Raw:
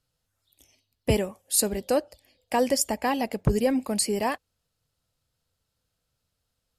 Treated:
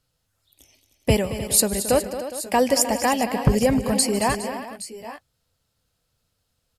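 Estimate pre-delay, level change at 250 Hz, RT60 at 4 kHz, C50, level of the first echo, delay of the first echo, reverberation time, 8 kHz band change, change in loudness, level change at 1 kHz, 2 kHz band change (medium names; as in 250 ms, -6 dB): no reverb, +4.5 dB, no reverb, no reverb, -18.0 dB, 151 ms, no reverb, +5.5 dB, +4.5 dB, +5.5 dB, +5.5 dB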